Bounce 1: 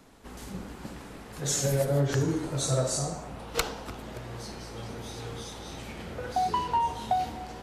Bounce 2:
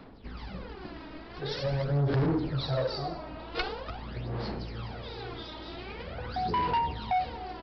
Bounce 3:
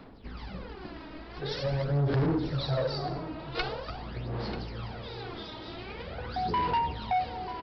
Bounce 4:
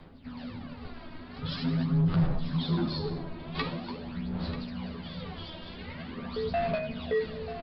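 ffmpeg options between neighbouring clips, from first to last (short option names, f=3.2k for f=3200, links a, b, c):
-af "aphaser=in_gain=1:out_gain=1:delay=3.2:decay=0.63:speed=0.45:type=sinusoidal,aresample=11025,asoftclip=type=tanh:threshold=-21.5dB,aresample=44100,volume=-1.5dB"
-af "aecho=1:1:939:0.224"
-filter_complex "[0:a]afreqshift=-300,asplit=2[a][b];[b]adelay=12,volume=-4.5dB[c];[a][c]amix=inputs=2:normalize=0,bandreject=f=119.1:t=h:w=4,bandreject=f=238.2:t=h:w=4,bandreject=f=357.3:t=h:w=4,bandreject=f=476.4:t=h:w=4,bandreject=f=595.5:t=h:w=4,bandreject=f=714.6:t=h:w=4,bandreject=f=833.7:t=h:w=4,bandreject=f=952.8:t=h:w=4,bandreject=f=1.0719k:t=h:w=4,bandreject=f=1.191k:t=h:w=4,bandreject=f=1.3101k:t=h:w=4,bandreject=f=1.4292k:t=h:w=4,bandreject=f=1.5483k:t=h:w=4,bandreject=f=1.6674k:t=h:w=4,bandreject=f=1.7865k:t=h:w=4,bandreject=f=1.9056k:t=h:w=4,bandreject=f=2.0247k:t=h:w=4,bandreject=f=2.1438k:t=h:w=4,bandreject=f=2.2629k:t=h:w=4,bandreject=f=2.382k:t=h:w=4,bandreject=f=2.5011k:t=h:w=4,bandreject=f=2.6202k:t=h:w=4,bandreject=f=2.7393k:t=h:w=4,bandreject=f=2.8584k:t=h:w=4,bandreject=f=2.9775k:t=h:w=4,bandreject=f=3.0966k:t=h:w=4,bandreject=f=3.2157k:t=h:w=4,bandreject=f=3.3348k:t=h:w=4,bandreject=f=3.4539k:t=h:w=4,bandreject=f=3.573k:t=h:w=4,bandreject=f=3.6921k:t=h:w=4,bandreject=f=3.8112k:t=h:w=4,bandreject=f=3.9303k:t=h:w=4,volume=-1.5dB"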